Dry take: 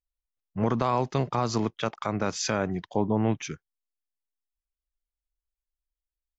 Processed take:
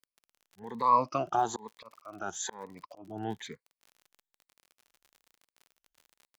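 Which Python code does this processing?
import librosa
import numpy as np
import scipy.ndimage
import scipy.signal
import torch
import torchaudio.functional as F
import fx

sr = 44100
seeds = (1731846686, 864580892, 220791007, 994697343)

y = fx.spec_ripple(x, sr, per_octave=0.96, drift_hz=1.1, depth_db=21)
y = fx.auto_swell(y, sr, attack_ms=491.0)
y = fx.graphic_eq_10(y, sr, hz=(125, 1000, 2000), db=(-5, 10, -6), at=(0.82, 3.02))
y = fx.dmg_crackle(y, sr, seeds[0], per_s=40.0, level_db=-36.0)
y = fx.low_shelf(y, sr, hz=200.0, db=-9.0)
y = y * librosa.db_to_amplitude(-7.5)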